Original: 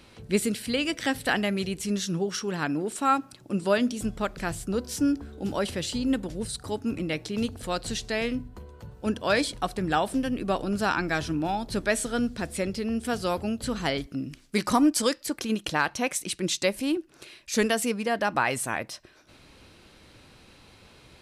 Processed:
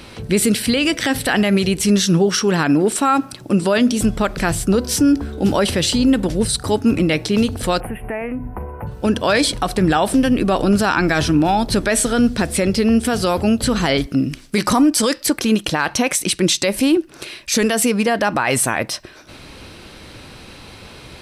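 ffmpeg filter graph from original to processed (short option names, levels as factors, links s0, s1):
-filter_complex "[0:a]asettb=1/sr,asplit=3[s0][s1][s2];[s0]atrim=end=7.804[s3];[s1]atrim=start=7.8:end=8.87,asetpts=PTS-STARTPTS,afade=t=in:d=0.004:c=qsin,afade=t=out:st=1.066:d=0.004:c=qsin,equalizer=f=800:w=2.4:g=10.5,acompressor=threshold=0.0158:ratio=6:attack=3.2:release=140:knee=1:detection=peak,asuperstop=centerf=5300:order=12:qfactor=0.71[s4];[s2]atrim=start=8.866[s5];[s3][s4]acrossfade=d=0.004:c1=hsin:c2=qsin[s6];[s6][s5]acrossfade=d=0.004:c1=qsin:c2=hsin,bandreject=f=6900:w=17,alimiter=level_in=10.6:limit=0.891:release=50:level=0:latency=1,volume=0.501"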